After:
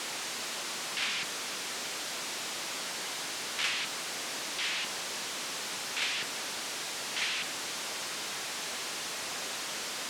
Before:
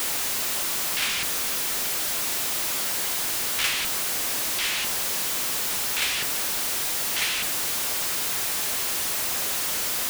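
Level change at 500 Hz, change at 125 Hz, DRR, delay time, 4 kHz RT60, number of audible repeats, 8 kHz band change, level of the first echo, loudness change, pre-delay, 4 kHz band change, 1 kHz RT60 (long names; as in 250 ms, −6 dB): −5.5 dB, −10.5 dB, no reverb audible, no echo audible, no reverb audible, no echo audible, −10.5 dB, no echo audible, −10.0 dB, no reverb audible, −6.0 dB, no reverb audible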